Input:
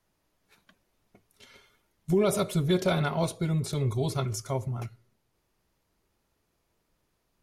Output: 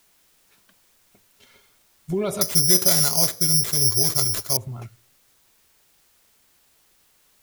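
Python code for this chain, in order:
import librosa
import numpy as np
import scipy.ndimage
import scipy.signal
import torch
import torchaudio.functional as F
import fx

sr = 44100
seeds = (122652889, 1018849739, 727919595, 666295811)

y = fx.resample_bad(x, sr, factor=8, down='none', up='zero_stuff', at=(2.41, 4.57))
y = fx.quant_dither(y, sr, seeds[0], bits=10, dither='triangular')
y = y * 10.0 ** (-1.0 / 20.0)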